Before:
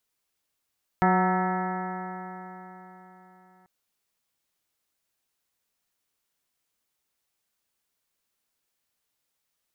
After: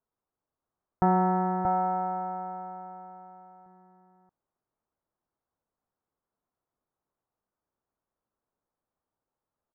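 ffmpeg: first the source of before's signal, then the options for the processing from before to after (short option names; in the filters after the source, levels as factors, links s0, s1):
-f lavfi -i "aevalsrc='0.0794*pow(10,-3*t/4)*sin(2*PI*183.1*t)+0.0447*pow(10,-3*t/4)*sin(2*PI*366.8*t)+0.0188*pow(10,-3*t/4)*sin(2*PI*551.71*t)+0.075*pow(10,-3*t/4)*sin(2*PI*738.41*t)+0.0562*pow(10,-3*t/4)*sin(2*PI*927.5*t)+0.0112*pow(10,-3*t/4)*sin(2*PI*1119.53*t)+0.0473*pow(10,-3*t/4)*sin(2*PI*1315.07*t)+0.01*pow(10,-3*t/4)*sin(2*PI*1514.66*t)+0.0299*pow(10,-3*t/4)*sin(2*PI*1718.81*t)+0.0141*pow(10,-3*t/4)*sin(2*PI*1928.02*t)+0.01*pow(10,-3*t/4)*sin(2*PI*2142.78*t)':d=2.64:s=44100"
-filter_complex "[0:a]lowpass=f=1200:w=0.5412,lowpass=f=1200:w=1.3066,asplit=2[s0][s1];[s1]aecho=0:1:631:0.631[s2];[s0][s2]amix=inputs=2:normalize=0"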